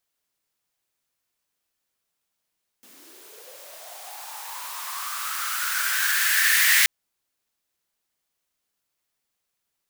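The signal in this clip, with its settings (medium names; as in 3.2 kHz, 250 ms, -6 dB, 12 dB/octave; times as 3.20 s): swept filtered noise white, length 4.03 s highpass, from 220 Hz, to 1.9 kHz, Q 6.9, linear, gain ramp +32 dB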